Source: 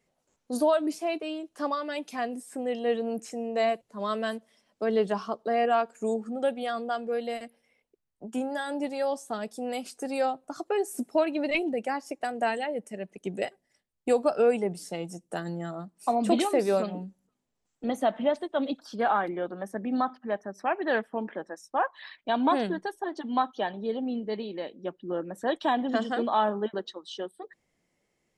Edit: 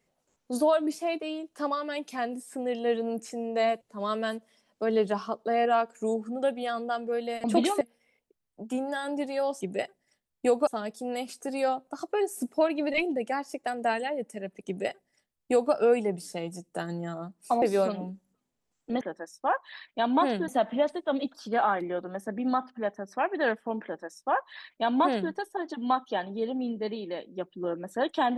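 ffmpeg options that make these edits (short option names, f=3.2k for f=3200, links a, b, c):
-filter_complex "[0:a]asplit=8[a][b][c][d][e][f][g][h];[a]atrim=end=7.442[i];[b]atrim=start=16.188:end=16.562[j];[c]atrim=start=7.438:end=9.242[k];[d]atrim=start=13.238:end=14.302[l];[e]atrim=start=9.238:end=16.192[m];[f]atrim=start=16.558:end=17.952[n];[g]atrim=start=21.308:end=22.782[o];[h]atrim=start=17.948[p];[i][j]acrossfade=d=0.004:c1=hsin:c2=hsin[q];[q][k]acrossfade=d=0.004:c1=hsin:c2=hsin[r];[r][l]acrossfade=d=0.004:c1=hsin:c2=hsin[s];[s][m]acrossfade=d=0.004:c1=hsin:c2=hsin[t];[t][n]acrossfade=d=0.004:c1=hsin:c2=hsin[u];[u][o]acrossfade=d=0.004:c1=hsin:c2=hsin[v];[v][p]acrossfade=d=0.004:c1=hsin:c2=hsin"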